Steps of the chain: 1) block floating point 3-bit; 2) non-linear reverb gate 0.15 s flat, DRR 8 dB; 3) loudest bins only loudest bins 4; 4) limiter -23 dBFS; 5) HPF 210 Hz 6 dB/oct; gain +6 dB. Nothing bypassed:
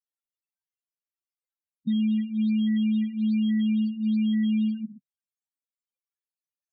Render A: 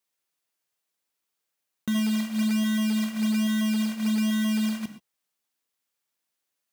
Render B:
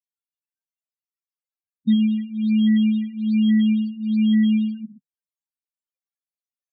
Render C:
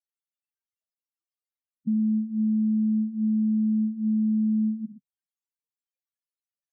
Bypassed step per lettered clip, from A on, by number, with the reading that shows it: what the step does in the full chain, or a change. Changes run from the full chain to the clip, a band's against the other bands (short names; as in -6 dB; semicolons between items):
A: 3, crest factor change +3.0 dB; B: 4, mean gain reduction 3.5 dB; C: 1, distortion -15 dB